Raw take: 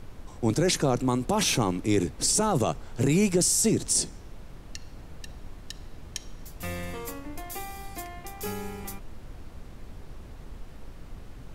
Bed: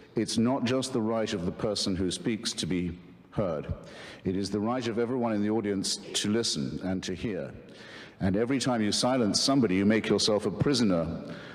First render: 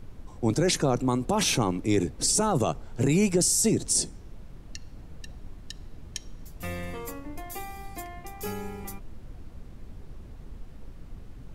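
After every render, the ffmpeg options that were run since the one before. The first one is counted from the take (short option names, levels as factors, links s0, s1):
-af "afftdn=nr=6:nf=-45"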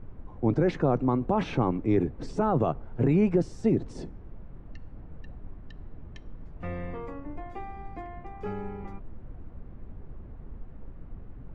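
-af "lowpass=1700,aemphasis=mode=reproduction:type=cd"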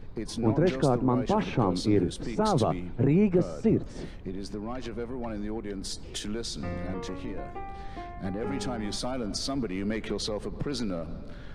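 -filter_complex "[1:a]volume=0.447[s0];[0:a][s0]amix=inputs=2:normalize=0"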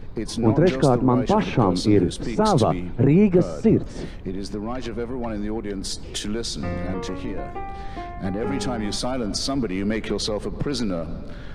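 -af "volume=2.11"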